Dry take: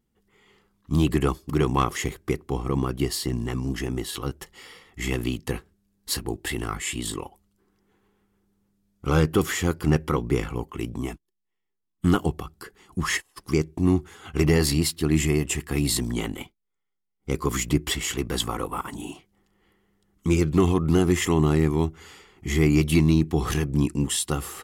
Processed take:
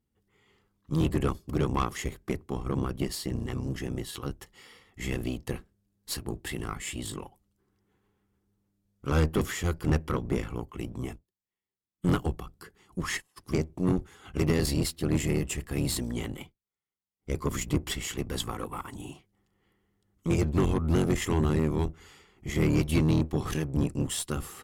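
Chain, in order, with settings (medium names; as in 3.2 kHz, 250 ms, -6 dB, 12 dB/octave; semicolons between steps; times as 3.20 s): octave divider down 1 oct, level -1 dB; Chebyshev shaper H 6 -18 dB, 8 -30 dB, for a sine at -7 dBFS; trim -7 dB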